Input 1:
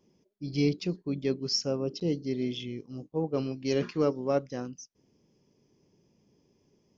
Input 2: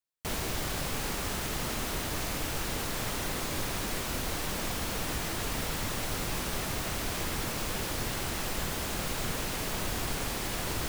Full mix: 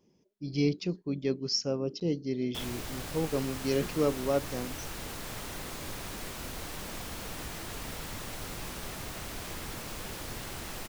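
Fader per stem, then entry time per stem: -1.0, -6.5 dB; 0.00, 2.30 s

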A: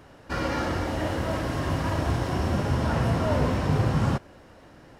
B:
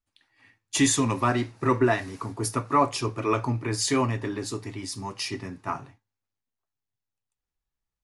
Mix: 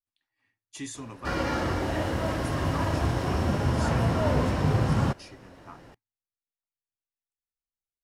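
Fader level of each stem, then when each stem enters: -0.5, -16.5 dB; 0.95, 0.00 s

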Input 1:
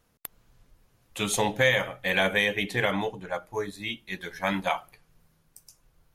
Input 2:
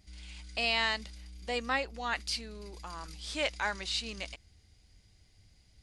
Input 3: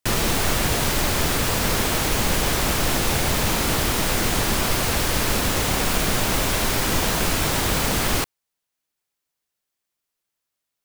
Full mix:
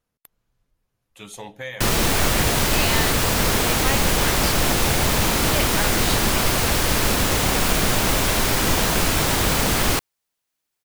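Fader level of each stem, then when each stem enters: -11.5, +3.0, +2.0 dB; 0.00, 2.15, 1.75 s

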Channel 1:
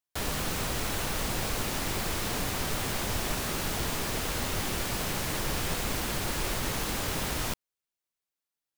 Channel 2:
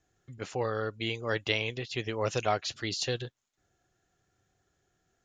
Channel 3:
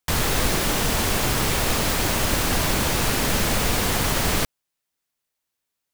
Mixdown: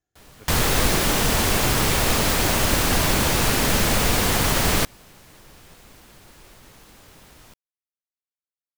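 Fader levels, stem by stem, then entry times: -17.5, -11.0, +2.0 dB; 0.00, 0.00, 0.40 s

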